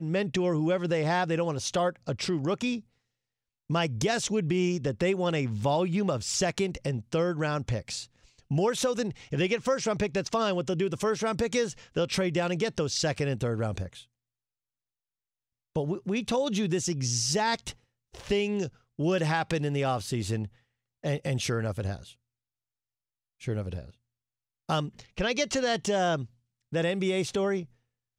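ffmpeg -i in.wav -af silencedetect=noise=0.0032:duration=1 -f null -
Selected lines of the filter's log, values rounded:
silence_start: 14.04
silence_end: 15.75 | silence_duration: 1.72
silence_start: 22.13
silence_end: 23.41 | silence_duration: 1.28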